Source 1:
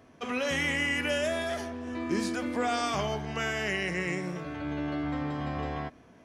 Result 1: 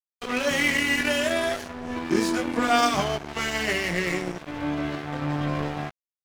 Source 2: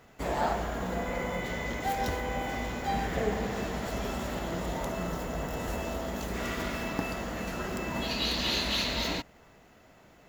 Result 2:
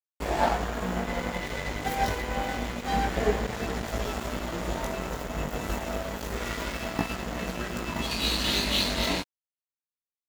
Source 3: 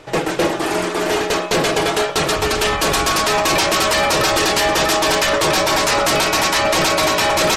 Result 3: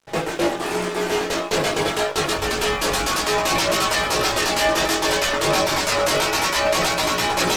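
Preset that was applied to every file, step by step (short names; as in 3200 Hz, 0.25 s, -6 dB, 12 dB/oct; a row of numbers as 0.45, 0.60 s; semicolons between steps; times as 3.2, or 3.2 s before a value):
chorus voices 2, 0.27 Hz, delay 19 ms, depth 2.4 ms; crossover distortion -40 dBFS; normalise peaks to -9 dBFS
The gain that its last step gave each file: +11.5, +8.5, -0.5 dB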